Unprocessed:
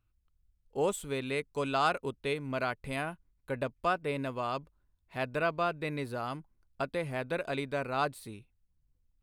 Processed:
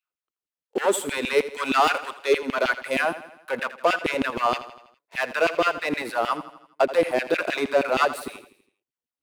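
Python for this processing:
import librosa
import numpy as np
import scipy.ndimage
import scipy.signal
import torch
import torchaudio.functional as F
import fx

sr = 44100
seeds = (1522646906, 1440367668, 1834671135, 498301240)

p1 = fx.highpass(x, sr, hz=200.0, slope=24, at=(2.22, 2.8))
p2 = fx.leveller(p1, sr, passes=3)
p3 = fx.filter_lfo_highpass(p2, sr, shape='saw_down', hz=6.4, low_hz=260.0, high_hz=2900.0, q=2.6)
y = p3 + fx.echo_feedback(p3, sr, ms=82, feedback_pct=53, wet_db=-14.5, dry=0)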